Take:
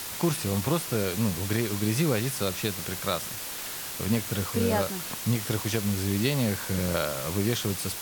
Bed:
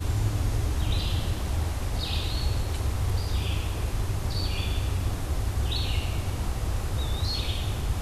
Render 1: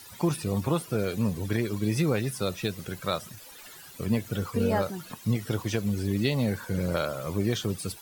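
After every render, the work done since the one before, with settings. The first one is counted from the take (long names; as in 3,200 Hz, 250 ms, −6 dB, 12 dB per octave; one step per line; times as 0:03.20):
broadband denoise 16 dB, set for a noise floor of −36 dBFS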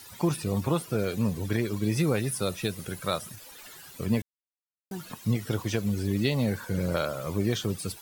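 0:02.00–0:03.36: parametric band 10,000 Hz +8 dB 0.32 octaves
0:04.22–0:04.91: silence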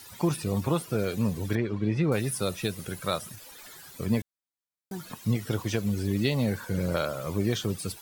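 0:01.55–0:02.12: low-pass filter 2,600 Hz
0:03.54–0:05.12: notch filter 2,800 Hz, Q 10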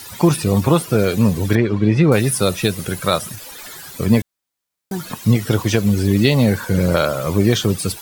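level +12 dB
brickwall limiter −2 dBFS, peak gain reduction 1.5 dB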